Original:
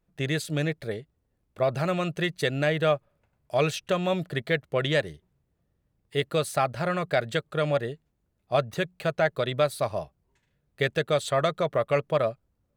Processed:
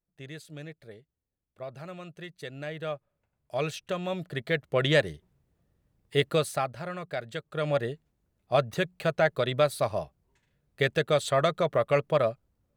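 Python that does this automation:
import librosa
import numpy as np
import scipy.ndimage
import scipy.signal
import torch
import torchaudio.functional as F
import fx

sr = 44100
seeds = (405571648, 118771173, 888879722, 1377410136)

y = fx.gain(x, sr, db=fx.line((2.29, -15.0), (3.58, -6.0), (4.16, -6.0), (4.92, 2.0), (6.29, 2.0), (6.84, -9.0), (7.34, -9.0), (7.82, 0.0)))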